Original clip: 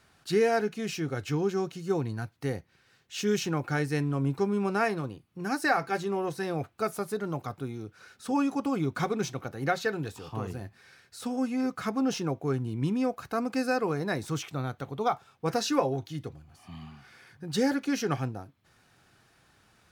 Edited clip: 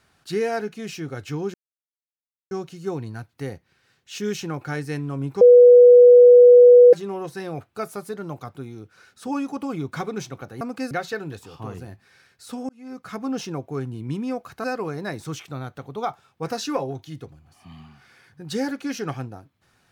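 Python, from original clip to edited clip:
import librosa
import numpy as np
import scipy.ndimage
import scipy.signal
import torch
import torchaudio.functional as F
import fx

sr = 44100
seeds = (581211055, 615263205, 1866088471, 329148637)

y = fx.edit(x, sr, fx.insert_silence(at_s=1.54, length_s=0.97),
    fx.bleep(start_s=4.44, length_s=1.52, hz=489.0, db=-6.0),
    fx.fade_in_span(start_s=11.42, length_s=0.55),
    fx.move(start_s=13.37, length_s=0.3, to_s=9.64), tone=tone)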